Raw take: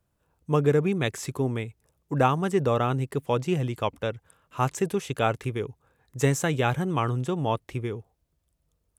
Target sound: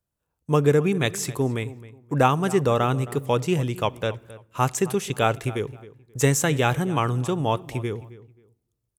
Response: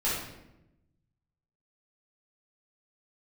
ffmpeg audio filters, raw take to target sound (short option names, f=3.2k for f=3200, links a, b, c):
-filter_complex "[0:a]agate=range=-13dB:threshold=-49dB:ratio=16:detection=peak,highshelf=f=4.7k:g=7,asplit=2[a][b];[b]adelay=266,lowpass=f=2.8k:p=1,volume=-17.5dB,asplit=2[c][d];[d]adelay=266,lowpass=f=2.8k:p=1,volume=0.26[e];[a][c][e]amix=inputs=3:normalize=0,asplit=2[f][g];[1:a]atrim=start_sample=2205[h];[g][h]afir=irnorm=-1:irlink=0,volume=-31.5dB[i];[f][i]amix=inputs=2:normalize=0,volume=2.5dB"